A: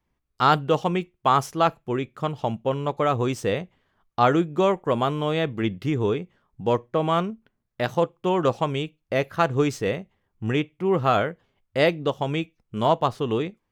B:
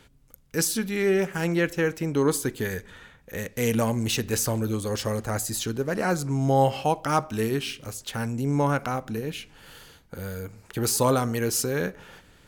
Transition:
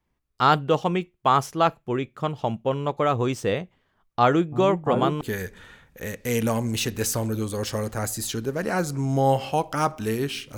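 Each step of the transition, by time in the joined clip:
A
3.81–5.21 s: delay with an opening low-pass 340 ms, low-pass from 200 Hz, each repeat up 2 oct, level -3 dB
5.21 s: go over to B from 2.53 s

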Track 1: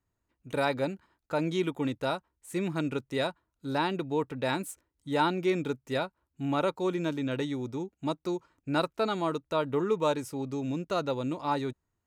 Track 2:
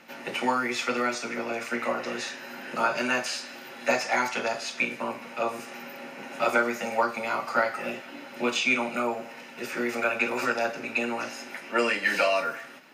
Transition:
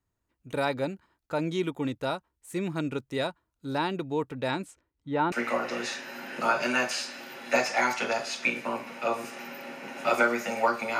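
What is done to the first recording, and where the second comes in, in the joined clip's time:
track 1
4.48–5.32 s: low-pass 8.3 kHz -> 1.7 kHz
5.32 s: go over to track 2 from 1.67 s

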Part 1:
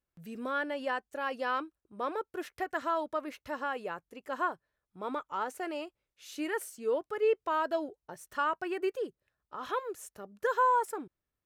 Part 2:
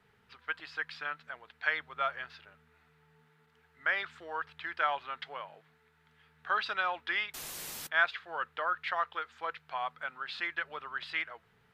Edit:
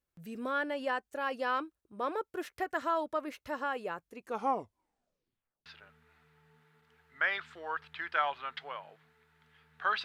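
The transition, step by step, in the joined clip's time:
part 1
4.10 s: tape stop 1.56 s
5.66 s: go over to part 2 from 2.31 s

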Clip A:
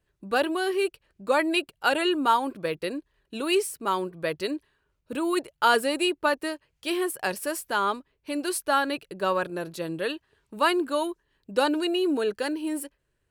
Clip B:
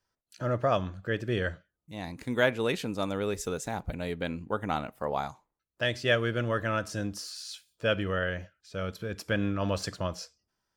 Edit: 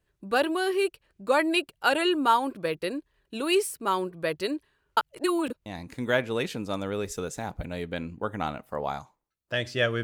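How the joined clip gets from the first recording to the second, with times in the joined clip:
clip A
4.97–5.66 s: reverse
5.66 s: go over to clip B from 1.95 s

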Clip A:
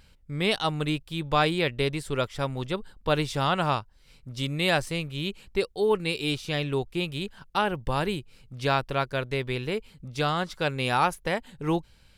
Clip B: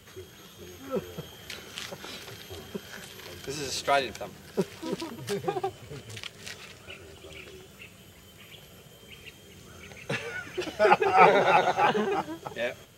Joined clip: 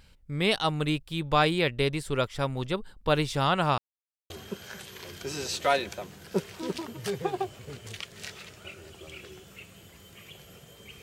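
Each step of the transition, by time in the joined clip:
clip A
3.78–4.30 s: mute
4.30 s: go over to clip B from 2.53 s

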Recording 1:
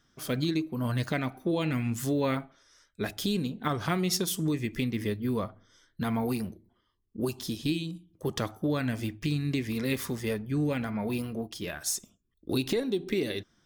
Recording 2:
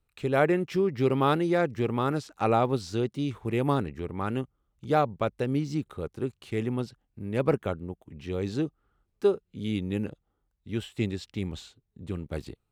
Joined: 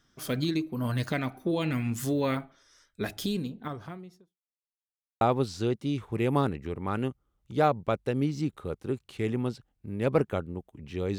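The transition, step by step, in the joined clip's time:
recording 1
2.98–4.39 s: studio fade out
4.39–5.21 s: mute
5.21 s: go over to recording 2 from 2.54 s

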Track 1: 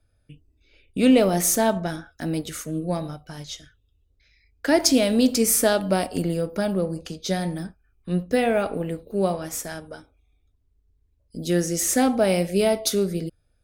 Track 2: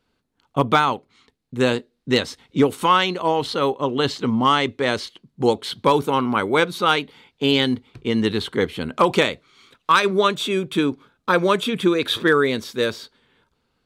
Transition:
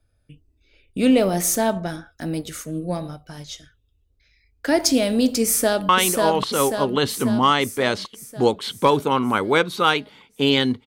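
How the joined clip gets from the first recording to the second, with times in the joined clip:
track 1
5.43–5.89 s: echo throw 540 ms, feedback 60%, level -2.5 dB
5.89 s: go over to track 2 from 2.91 s

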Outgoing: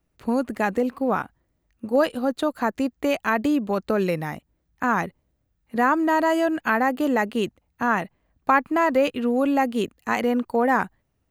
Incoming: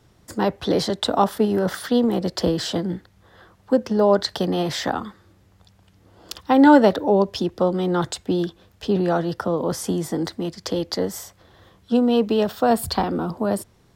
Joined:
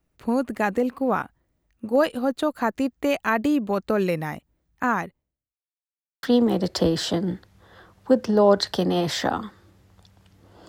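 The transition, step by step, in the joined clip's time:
outgoing
4.87–5.64 s: fade out quadratic
5.64–6.23 s: mute
6.23 s: go over to incoming from 1.85 s

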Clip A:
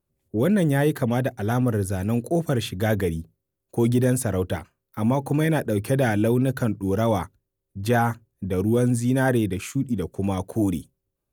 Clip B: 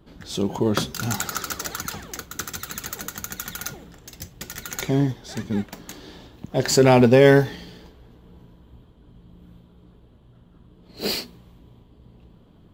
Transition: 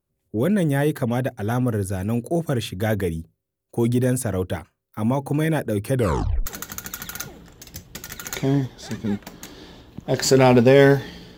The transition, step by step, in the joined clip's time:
clip A
5.94 s: tape stop 0.52 s
6.46 s: go over to clip B from 2.92 s

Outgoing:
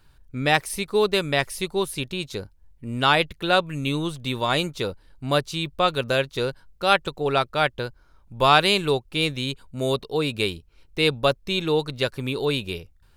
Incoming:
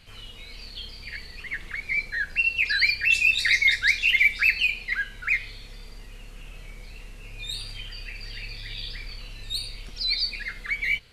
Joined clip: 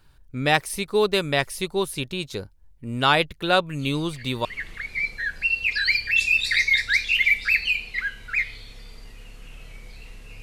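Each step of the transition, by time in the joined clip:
outgoing
3.79 s: add incoming from 0.73 s 0.66 s -8 dB
4.45 s: go over to incoming from 1.39 s

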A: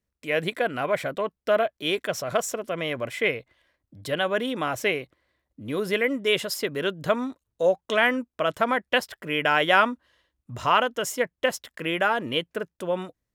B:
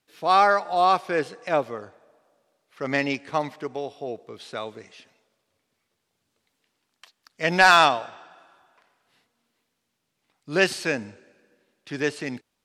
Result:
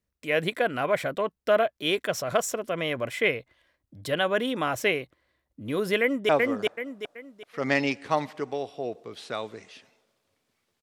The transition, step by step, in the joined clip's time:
A
6.01–6.29 s: echo throw 380 ms, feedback 35%, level -1 dB
6.29 s: go over to B from 1.52 s

